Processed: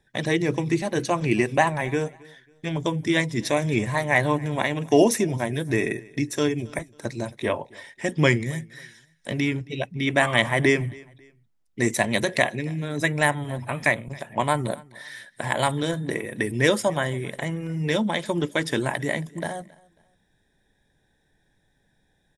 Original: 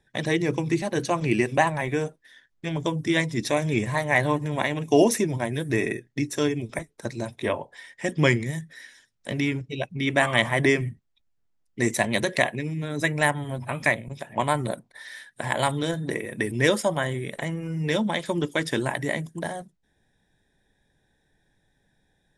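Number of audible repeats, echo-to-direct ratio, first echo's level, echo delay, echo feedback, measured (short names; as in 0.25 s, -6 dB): 2, -23.5 dB, -24.0 dB, 0.272 s, 32%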